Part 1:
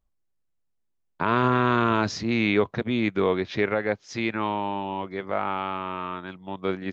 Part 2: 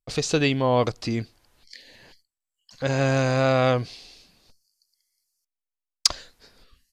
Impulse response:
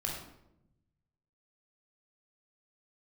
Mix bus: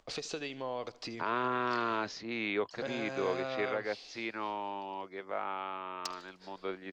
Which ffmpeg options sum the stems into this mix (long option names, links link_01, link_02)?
-filter_complex "[0:a]acompressor=mode=upward:threshold=-31dB:ratio=2.5,volume=-9dB[link_01];[1:a]acompressor=threshold=-30dB:ratio=8,aeval=exprs='(mod(8.91*val(0)+1,2)-1)/8.91':channel_layout=same,volume=-3.5dB,asplit=2[link_02][link_03];[link_03]volume=-20.5dB,aecho=0:1:76|152|228|304|380|456|532|608:1|0.53|0.281|0.149|0.0789|0.0418|0.0222|0.0117[link_04];[link_01][link_02][link_04]amix=inputs=3:normalize=0,acrossover=split=290 7100:gain=0.2 1 0.0794[link_05][link_06][link_07];[link_05][link_06][link_07]amix=inputs=3:normalize=0"